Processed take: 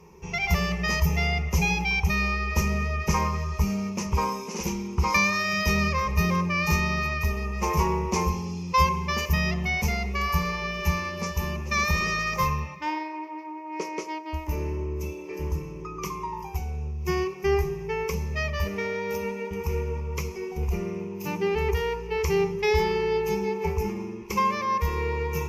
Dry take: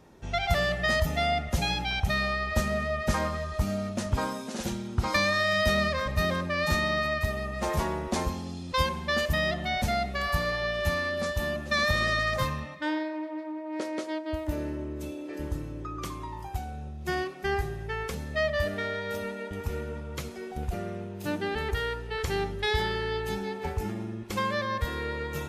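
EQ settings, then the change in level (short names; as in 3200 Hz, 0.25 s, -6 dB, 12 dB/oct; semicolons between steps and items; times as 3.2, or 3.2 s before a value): ripple EQ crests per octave 0.79, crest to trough 17 dB; 0.0 dB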